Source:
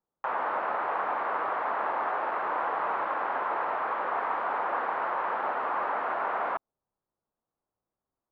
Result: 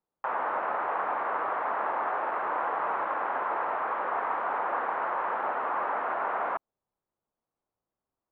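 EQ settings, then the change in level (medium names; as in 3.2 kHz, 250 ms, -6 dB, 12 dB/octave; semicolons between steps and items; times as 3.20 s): tone controls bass -1 dB, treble -13 dB; 0.0 dB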